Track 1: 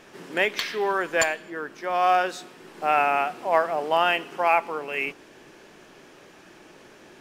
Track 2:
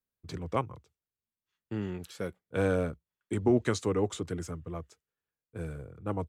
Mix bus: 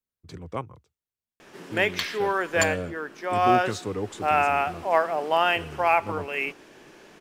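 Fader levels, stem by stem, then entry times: -0.5, -2.0 dB; 1.40, 0.00 s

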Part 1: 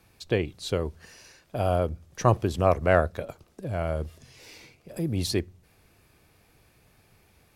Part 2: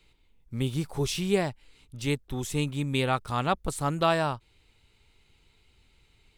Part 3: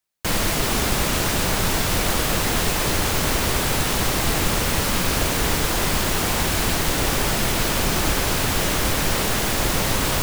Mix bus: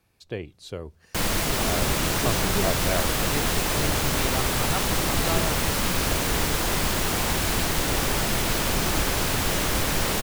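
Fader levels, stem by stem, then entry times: -7.5, -6.0, -3.0 dB; 0.00, 1.25, 0.90 s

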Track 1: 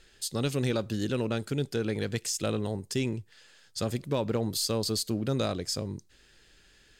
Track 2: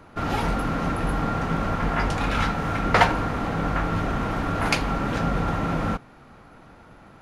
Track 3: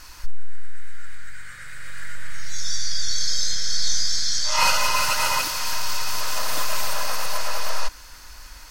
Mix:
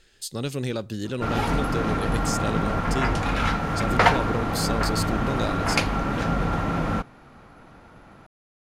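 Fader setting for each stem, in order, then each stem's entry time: 0.0 dB, 0.0 dB, off; 0.00 s, 1.05 s, off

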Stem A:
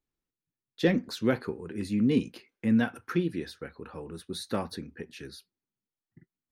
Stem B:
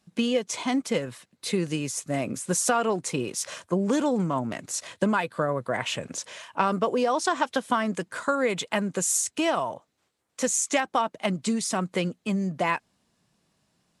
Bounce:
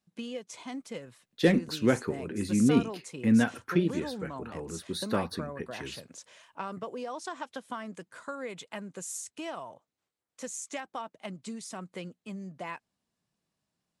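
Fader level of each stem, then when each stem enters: +1.5, -13.5 dB; 0.60, 0.00 s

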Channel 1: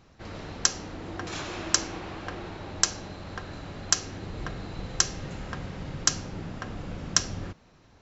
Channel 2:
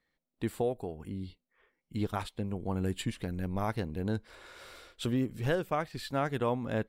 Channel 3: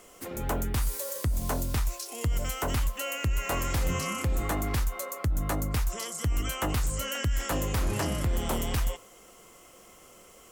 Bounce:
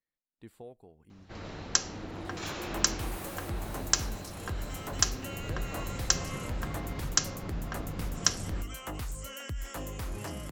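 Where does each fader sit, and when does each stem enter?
-2.5, -16.5, -9.5 dB; 1.10, 0.00, 2.25 s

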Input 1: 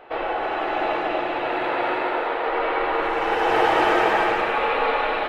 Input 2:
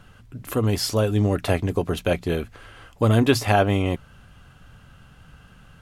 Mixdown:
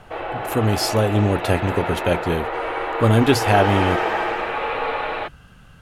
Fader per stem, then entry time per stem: -2.5, +2.0 dB; 0.00, 0.00 s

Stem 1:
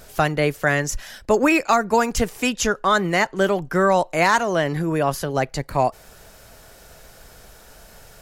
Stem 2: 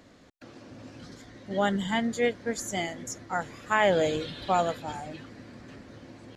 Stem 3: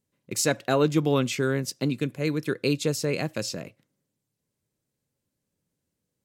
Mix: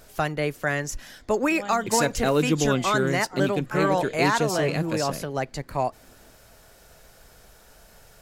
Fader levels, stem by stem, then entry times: -6.0, -11.5, 0.0 dB; 0.00, 0.00, 1.55 s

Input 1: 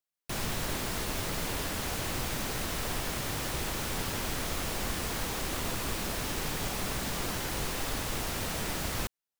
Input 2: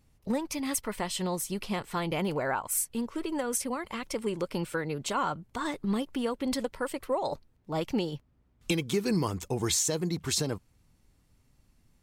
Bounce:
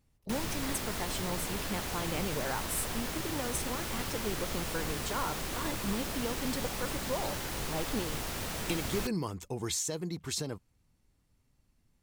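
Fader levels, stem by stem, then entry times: -3.0, -6.0 dB; 0.00, 0.00 s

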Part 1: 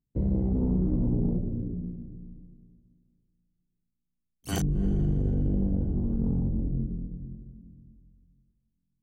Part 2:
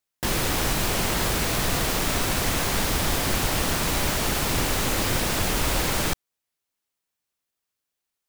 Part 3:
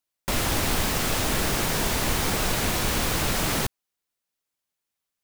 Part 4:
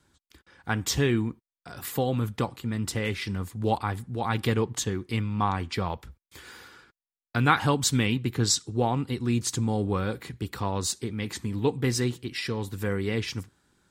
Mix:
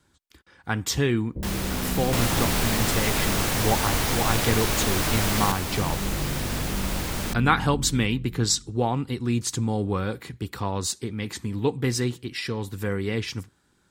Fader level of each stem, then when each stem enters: -4.5, -6.5, -1.0, +1.0 dB; 1.20, 1.20, 1.85, 0.00 s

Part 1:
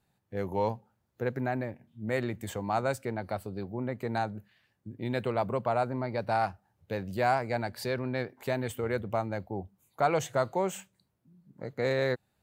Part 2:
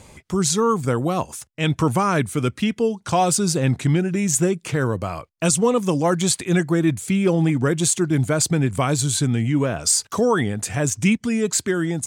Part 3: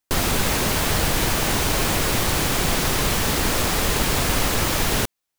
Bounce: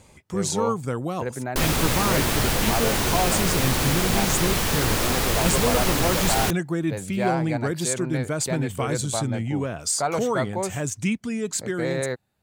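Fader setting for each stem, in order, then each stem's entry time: +1.0, -6.5, -2.0 dB; 0.00, 0.00, 1.45 s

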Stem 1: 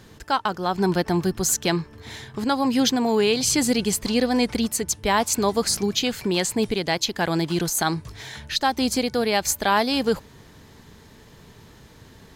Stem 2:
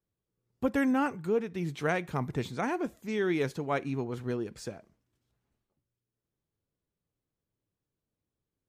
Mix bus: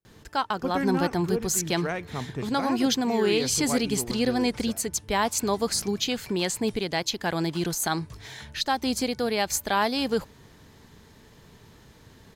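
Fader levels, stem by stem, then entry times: -4.0, -1.5 dB; 0.05, 0.00 s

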